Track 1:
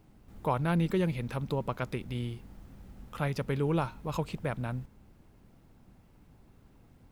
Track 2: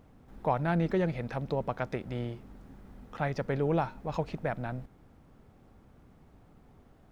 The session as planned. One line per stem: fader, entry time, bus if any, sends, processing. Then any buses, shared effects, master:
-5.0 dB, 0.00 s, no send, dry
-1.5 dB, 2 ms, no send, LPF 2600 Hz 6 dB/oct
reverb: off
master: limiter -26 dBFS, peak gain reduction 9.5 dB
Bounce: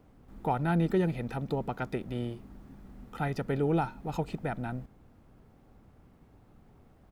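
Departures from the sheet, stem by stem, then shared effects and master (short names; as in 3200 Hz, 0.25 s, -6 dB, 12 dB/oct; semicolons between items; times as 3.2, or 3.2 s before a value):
stem 2: polarity flipped; master: missing limiter -26 dBFS, peak gain reduction 9.5 dB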